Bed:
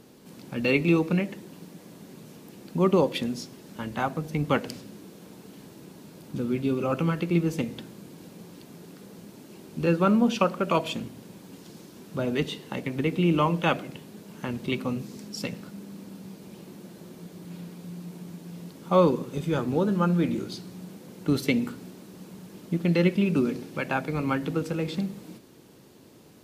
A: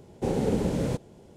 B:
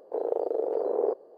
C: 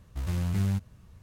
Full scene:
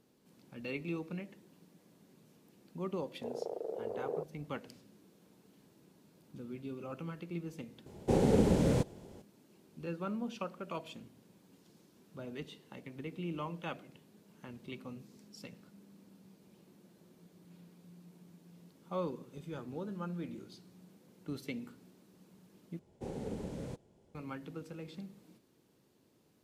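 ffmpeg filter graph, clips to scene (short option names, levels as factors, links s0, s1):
-filter_complex "[1:a]asplit=2[s0][s1];[0:a]volume=0.141,asplit=2[s2][s3];[s2]atrim=end=22.794[s4];[s1]atrim=end=1.36,asetpts=PTS-STARTPTS,volume=0.178[s5];[s3]atrim=start=24.146[s6];[2:a]atrim=end=1.37,asetpts=PTS-STARTPTS,volume=0.266,afade=t=in:d=0.004:c=hsin,afade=t=out:st=1.366:d=0.004:c=hsin,adelay=3100[s7];[s0]atrim=end=1.36,asetpts=PTS-STARTPTS,volume=0.891,afade=t=in:d=0.004:c=hsin,afade=t=out:st=1.356:d=0.004:c=hsin,adelay=346626S[s8];[s4][s5]acrossfade=d=0.004:c1=hsin:c2=hsin[s9];[s9][s6]acrossfade=d=0.004:c1=hsin:c2=hsin[s10];[s10][s7][s8]amix=inputs=3:normalize=0"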